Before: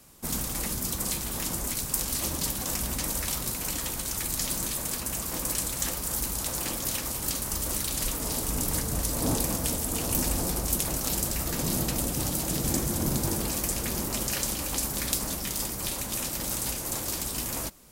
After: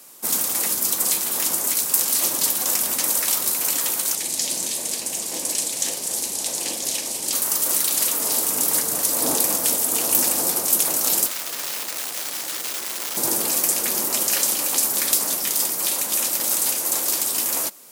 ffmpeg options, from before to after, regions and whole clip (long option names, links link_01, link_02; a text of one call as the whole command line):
ffmpeg -i in.wav -filter_complex "[0:a]asettb=1/sr,asplit=3[link_01][link_02][link_03];[link_01]atrim=end=4.154[link_04];[link_02]atrim=start=4.15:end=7.33,asetpts=PTS-STARTPTS,afade=type=in:duration=0.004:curve=qsin,afade=type=out:start_time=3.176:duration=0.004:curve=qsin,lowpass=8600,equalizer=frequency=1300:width_type=o:width=0.87:gain=-12.5,asplit=2[link_05][link_06];[link_06]adelay=41,volume=-11.5dB[link_07];[link_05][link_07]amix=inputs=2:normalize=0,atrim=end_sample=140238[link_08];[link_03]atrim=start=7.326[link_09];[link_04][link_08]acrossfade=duration=0.004:curve1=hsin:curve2=qsin[link_10];[link_10][link_09]acrossfade=duration=0.004:curve1=qsin:curve2=hsin,asettb=1/sr,asplit=3[link_11][link_12][link_13];[link_11]atrim=end=11.264[link_14];[link_12]atrim=start=11.26:end=13.17,asetpts=PTS-STARTPTS,afade=type=in:duration=0.004:curve=qsin,afade=type=out:start_time=1.906:duration=0.004:curve=qsin,aeval=exprs='(mod(14.1*val(0)+1,2)-1)/14.1':channel_layout=same,acrossover=split=270|960|6500[link_15][link_16][link_17][link_18];[link_15]acompressor=threshold=-52dB:ratio=3[link_19];[link_16]acompressor=threshold=-51dB:ratio=3[link_20];[link_17]acompressor=threshold=-39dB:ratio=3[link_21];[link_18]acompressor=threshold=-43dB:ratio=3[link_22];[link_19][link_20][link_21][link_22]amix=inputs=4:normalize=0[link_23];[link_13]atrim=start=13.166[link_24];[link_14][link_23]acrossfade=duration=0.004:curve1=hsin:curve2=qsin[link_25];[link_25][link_24]acrossfade=duration=0.004:curve1=qsin:curve2=hsin,highpass=360,highshelf=frequency=6200:gain=6.5,acontrast=82,volume=-1dB" out.wav